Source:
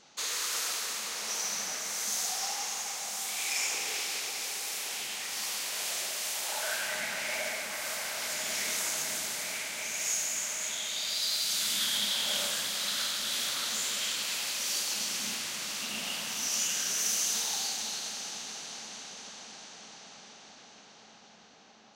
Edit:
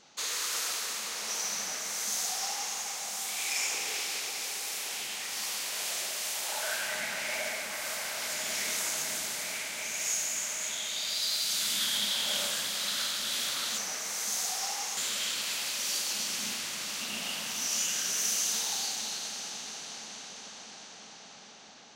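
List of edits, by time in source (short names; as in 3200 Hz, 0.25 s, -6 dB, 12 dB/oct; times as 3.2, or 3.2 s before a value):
1.58–2.77 copy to 13.78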